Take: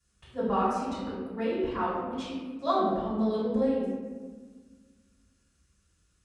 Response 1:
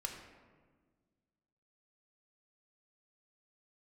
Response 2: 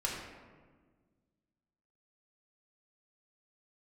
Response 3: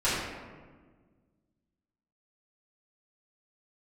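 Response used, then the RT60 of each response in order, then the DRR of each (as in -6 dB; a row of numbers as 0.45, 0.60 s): 3; 1.5, 1.5, 1.5 s; 1.5, -4.0, -13.0 dB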